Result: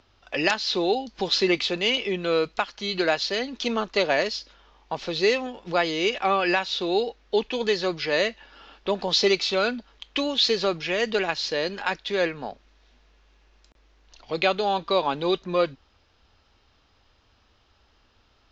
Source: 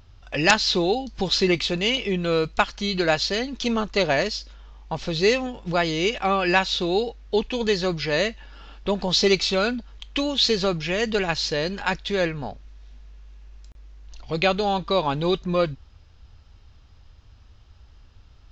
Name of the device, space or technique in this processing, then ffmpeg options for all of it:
DJ mixer with the lows and highs turned down: -filter_complex "[0:a]acrossover=split=230 7100:gain=0.158 1 0.0708[a][b][c];[a][b][c]amix=inputs=3:normalize=0,alimiter=limit=-9.5dB:level=0:latency=1:release=351"

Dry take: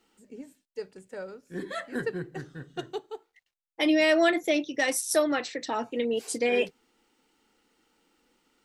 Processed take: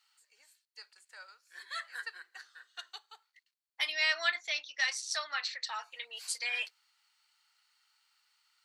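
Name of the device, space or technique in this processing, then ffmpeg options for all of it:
headphones lying on a table: -filter_complex "[0:a]highpass=f=1.1k:w=0.5412,highpass=f=1.1k:w=1.3066,equalizer=f=4.4k:t=o:w=0.21:g=11.5,asettb=1/sr,asplit=3[a][b][c];[a]atrim=end=3.924[d];[b]atrim=start=3.92:end=5.64,asetpts=PTS-STARTPTS,afade=t=in:d=0.004:c=qsin,afade=t=out:st=1.716:d=0.004:c=qsin,lowpass=f=6.6k:w=0.5412,lowpass=f=6.6k:w=1.3066[e];[c]atrim=start=5.636[f];[d][e]acrossfade=d=0.004:c1=hsin:c2=qsin[g];[g][f]acrossfade=d=0.004:c1=qsin:c2=hsin,volume=-2.5dB"

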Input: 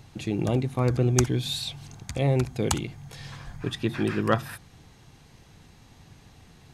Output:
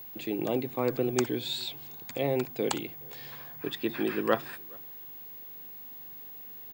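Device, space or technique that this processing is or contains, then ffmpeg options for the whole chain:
old television with a line whistle: -filter_complex "[0:a]highpass=f=180:w=0.5412,highpass=f=180:w=1.3066,equalizer=f=190:t=q:w=4:g=-9,equalizer=f=470:t=q:w=4:g=3,equalizer=f=1.3k:t=q:w=4:g=-3,equalizer=f=6k:t=q:w=4:g=-10,lowpass=f=8k:w=0.5412,lowpass=f=8k:w=1.3066,asplit=2[a][b];[b]adelay=419.8,volume=-27dB,highshelf=f=4k:g=-9.45[c];[a][c]amix=inputs=2:normalize=0,aeval=exprs='val(0)+0.01*sin(2*PI*15625*n/s)':c=same,volume=-2dB"

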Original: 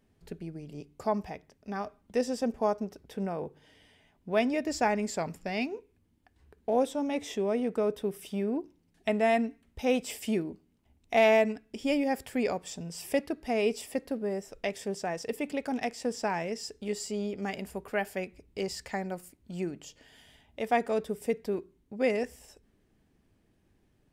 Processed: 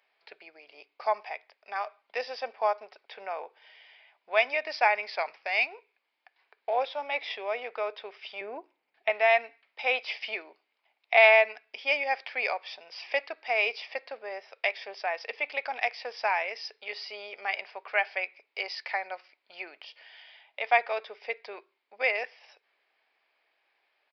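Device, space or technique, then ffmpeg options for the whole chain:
musical greeting card: -filter_complex "[0:a]aresample=11025,aresample=44100,highpass=f=670:w=0.5412,highpass=f=670:w=1.3066,equalizer=f=2.3k:t=o:w=0.31:g=9,asettb=1/sr,asplit=3[a][b][c];[a]atrim=end=8.414[d];[b]atrim=start=8.41:end=9.1,asetpts=PTS-STARTPTS,afade=t=in:d=0.004:c=qsin,afade=t=out:st=0.686:d=0.004:c=qsin,aemphasis=mode=reproduction:type=riaa[e];[c]atrim=start=9.096[f];[d][e]acrossfade=d=0.004:c1=hsin:c2=qsin[g];[g][f]acrossfade=d=0.004:c1=qsin:c2=hsin,volume=5dB"

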